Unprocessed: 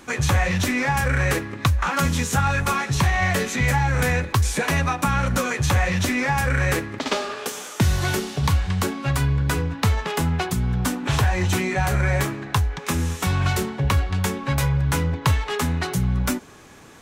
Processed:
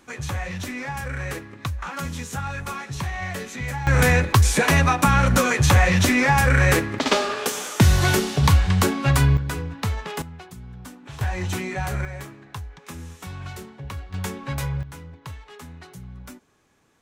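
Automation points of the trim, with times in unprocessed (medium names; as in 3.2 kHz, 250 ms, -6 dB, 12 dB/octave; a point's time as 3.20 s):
-9 dB
from 3.87 s +4 dB
from 9.37 s -5.5 dB
from 10.22 s -17 dB
from 11.21 s -5.5 dB
from 12.05 s -14 dB
from 14.14 s -6 dB
from 14.83 s -18 dB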